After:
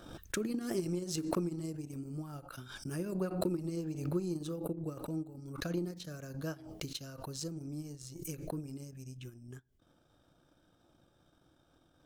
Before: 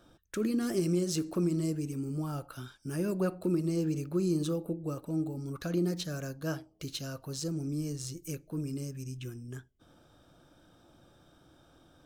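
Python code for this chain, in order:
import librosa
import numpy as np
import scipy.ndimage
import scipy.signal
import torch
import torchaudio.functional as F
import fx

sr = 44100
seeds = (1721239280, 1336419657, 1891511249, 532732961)

y = fx.transient(x, sr, attack_db=7, sustain_db=-11)
y = fx.pre_swell(y, sr, db_per_s=57.0)
y = y * 10.0 ** (-8.5 / 20.0)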